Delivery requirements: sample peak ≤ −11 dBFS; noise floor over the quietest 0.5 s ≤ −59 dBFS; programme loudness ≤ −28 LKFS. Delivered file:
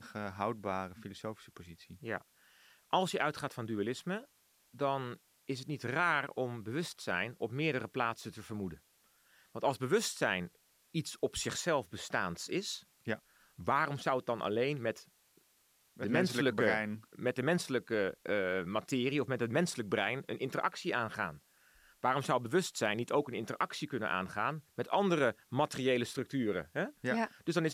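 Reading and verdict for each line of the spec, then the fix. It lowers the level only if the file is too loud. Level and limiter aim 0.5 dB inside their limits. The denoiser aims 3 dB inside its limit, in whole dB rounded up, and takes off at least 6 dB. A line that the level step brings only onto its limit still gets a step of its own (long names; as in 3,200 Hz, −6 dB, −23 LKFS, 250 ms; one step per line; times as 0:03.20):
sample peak −17.0 dBFS: in spec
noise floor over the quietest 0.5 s −71 dBFS: in spec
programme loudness −35.0 LKFS: in spec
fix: no processing needed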